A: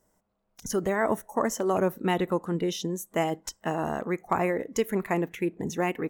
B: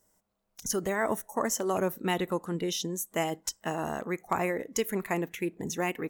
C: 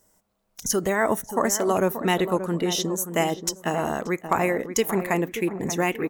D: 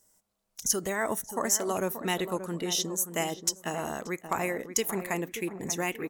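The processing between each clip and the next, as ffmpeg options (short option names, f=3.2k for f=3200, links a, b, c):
-af "highshelf=f=2.7k:g=9,volume=-4dB"
-filter_complex "[0:a]asplit=2[a][b];[b]adelay=580,lowpass=f=1.3k:p=1,volume=-9.5dB,asplit=2[c][d];[d]adelay=580,lowpass=f=1.3k:p=1,volume=0.39,asplit=2[e][f];[f]adelay=580,lowpass=f=1.3k:p=1,volume=0.39,asplit=2[g][h];[h]adelay=580,lowpass=f=1.3k:p=1,volume=0.39[i];[a][c][e][g][i]amix=inputs=5:normalize=0,volume=6.5dB"
-af "equalizer=f=8.7k:w=0.32:g=8.5,volume=-8.5dB"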